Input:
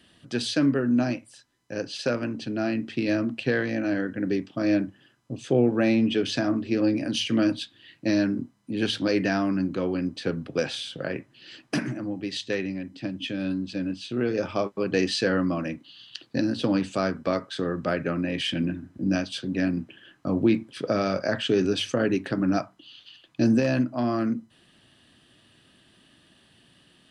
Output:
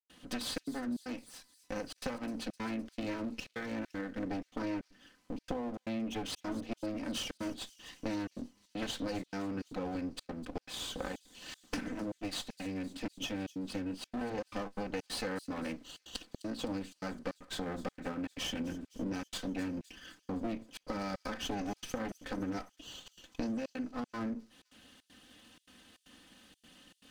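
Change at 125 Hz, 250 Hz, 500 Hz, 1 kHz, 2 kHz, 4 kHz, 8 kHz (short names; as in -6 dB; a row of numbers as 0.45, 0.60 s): -15.5, -13.5, -14.5, -8.5, -12.5, -10.0, -5.0 dB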